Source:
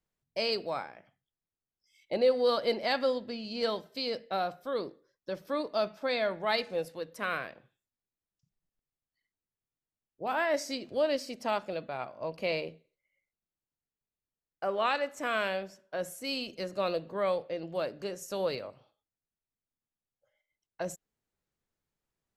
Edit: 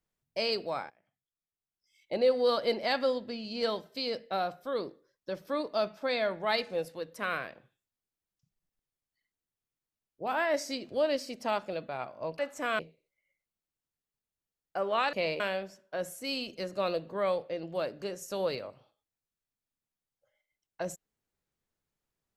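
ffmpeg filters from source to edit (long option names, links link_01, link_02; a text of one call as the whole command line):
ffmpeg -i in.wav -filter_complex "[0:a]asplit=6[link_01][link_02][link_03][link_04][link_05][link_06];[link_01]atrim=end=0.9,asetpts=PTS-STARTPTS,afade=type=out:start_time=0.896:duration=0.004:curve=hsin:silence=0.105925[link_07];[link_02]atrim=start=0.9:end=12.392,asetpts=PTS-STARTPTS,afade=type=in:duration=1.42:silence=0.105925[link_08];[link_03]atrim=start=14.998:end=15.402[link_09];[link_04]atrim=start=12.658:end=15.002[link_10];[link_05]atrim=start=12.388:end=12.662[link_11];[link_06]atrim=start=15.398[link_12];[link_07][link_08]concat=n=2:v=0:a=1[link_13];[link_13][link_09]acrossfade=duration=0.004:curve1=hsin:curve2=hsin[link_14];[link_14][link_10]acrossfade=duration=0.004:curve1=hsin:curve2=hsin[link_15];[link_15][link_11]acrossfade=duration=0.004:curve1=hsin:curve2=hsin[link_16];[link_16][link_12]acrossfade=duration=0.004:curve1=hsin:curve2=hsin" out.wav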